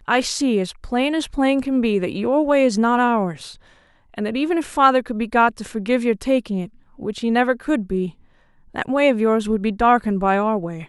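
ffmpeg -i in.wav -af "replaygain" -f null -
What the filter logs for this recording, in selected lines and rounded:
track_gain = -0.3 dB
track_peak = 0.544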